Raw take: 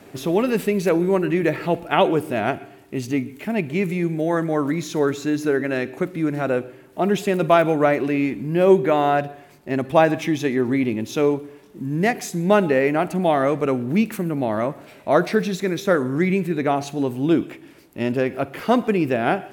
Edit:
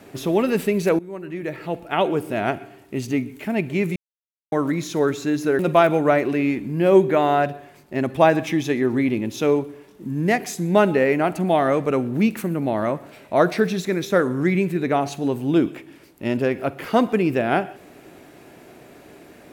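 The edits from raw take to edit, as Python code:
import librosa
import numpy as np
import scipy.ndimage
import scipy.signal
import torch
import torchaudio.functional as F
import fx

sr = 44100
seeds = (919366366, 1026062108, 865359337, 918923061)

y = fx.edit(x, sr, fx.fade_in_from(start_s=0.99, length_s=1.59, floor_db=-19.5),
    fx.silence(start_s=3.96, length_s=0.56),
    fx.cut(start_s=5.59, length_s=1.75), tone=tone)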